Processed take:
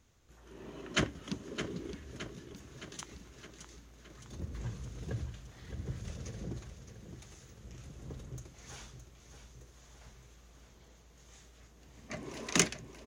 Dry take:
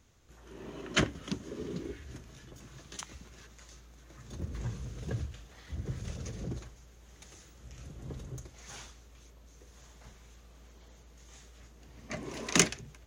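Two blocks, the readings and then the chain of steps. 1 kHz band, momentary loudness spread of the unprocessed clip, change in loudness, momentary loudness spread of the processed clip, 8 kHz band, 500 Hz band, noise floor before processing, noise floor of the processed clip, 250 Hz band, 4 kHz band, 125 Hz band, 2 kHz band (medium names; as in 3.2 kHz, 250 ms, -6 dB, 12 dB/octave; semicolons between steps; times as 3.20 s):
-2.5 dB, 24 LU, -3.5 dB, 24 LU, -3.0 dB, -2.5 dB, -56 dBFS, -60 dBFS, -2.5 dB, -2.5 dB, -2.5 dB, -2.5 dB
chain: feedback delay 616 ms, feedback 57%, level -9.5 dB; trim -3 dB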